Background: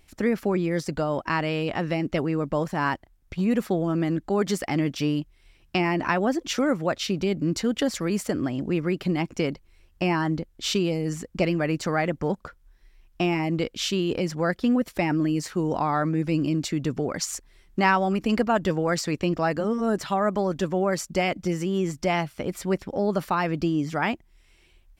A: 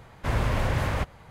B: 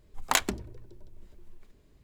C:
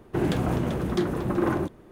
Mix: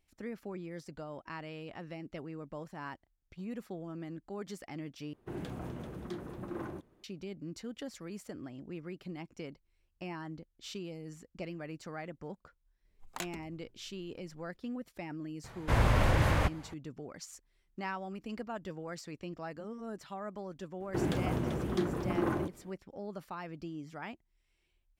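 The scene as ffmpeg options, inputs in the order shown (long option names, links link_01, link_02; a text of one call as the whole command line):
ffmpeg -i bed.wav -i cue0.wav -i cue1.wav -i cue2.wav -filter_complex "[3:a]asplit=2[link_01][link_02];[0:a]volume=-18dB,asplit=2[link_03][link_04];[link_03]atrim=end=5.134[link_05];[link_01]atrim=end=1.91,asetpts=PTS-STARTPTS,volume=-16dB[link_06];[link_04]atrim=start=7.036[link_07];[2:a]atrim=end=2.03,asetpts=PTS-STARTPTS,volume=-16.5dB,afade=type=in:duration=0.004:curve=hsin,afade=type=out:start_time=2.026:duration=0.004:curve=hsin,adelay=12850[link_08];[1:a]atrim=end=1.3,asetpts=PTS-STARTPTS,volume=-1dB,afade=type=in:duration=0.004:curve=hsin,afade=type=out:start_time=1.296:duration=0.004:curve=hsin,adelay=15440[link_09];[link_02]atrim=end=1.91,asetpts=PTS-STARTPTS,volume=-7dB,afade=type=in:duration=0.004:curve=hsin,afade=type=out:start_time=1.906:duration=0.004:curve=hsin,adelay=20800[link_10];[link_05][link_06]acrossfade=duration=0.004:curve1=hsin:curve2=hsin[link_11];[link_11][link_07]acrossfade=duration=0.004:curve1=hsin:curve2=hsin[link_12];[link_12][link_08][link_09][link_10]amix=inputs=4:normalize=0" out.wav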